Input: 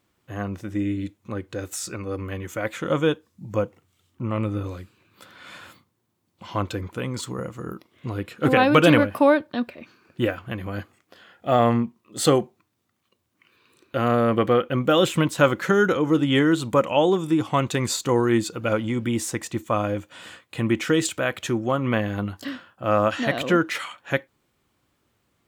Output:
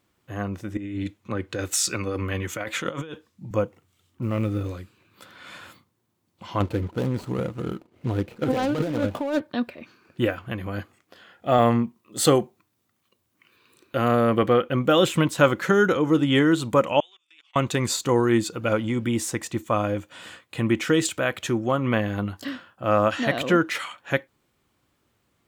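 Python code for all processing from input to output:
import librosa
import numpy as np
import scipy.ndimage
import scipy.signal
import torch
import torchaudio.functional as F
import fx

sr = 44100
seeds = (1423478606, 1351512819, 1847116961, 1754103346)

y = fx.chain(x, sr, fx.peak_eq(hz=3100.0, db=5.5, octaves=2.5),
    fx.over_compress(threshold_db=-29.0, ratio=-1.0),
    fx.band_widen(depth_pct=40), at=(0.77, 3.51))
y = fx.chain(y, sr, fx.law_mismatch(coded='mu'),
    fx.peak_eq(hz=990.0, db=-7.5, octaves=0.62), at=(4.22, 4.72))
y = fx.chain(y, sr, fx.median_filter(points=25),
    fx.notch(hz=1100.0, q=8.9),
    fx.over_compress(threshold_db=-23.0, ratio=-1.0), at=(6.6, 9.4))
y = fx.chain(y, sr, fx.highpass(hz=44.0, slope=12),
    fx.high_shelf(hz=9400.0, db=6.0), at=(11.58, 14.43))
y = fx.chain(y, sr, fx.level_steps(step_db=23),
    fx.ladder_bandpass(hz=3100.0, resonance_pct=45), at=(17.0, 17.56))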